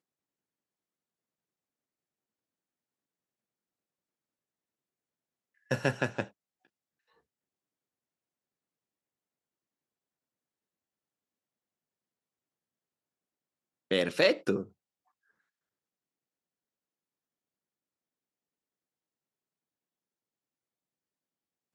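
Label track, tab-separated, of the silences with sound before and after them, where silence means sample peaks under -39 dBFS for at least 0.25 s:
6.240000	13.910000	silence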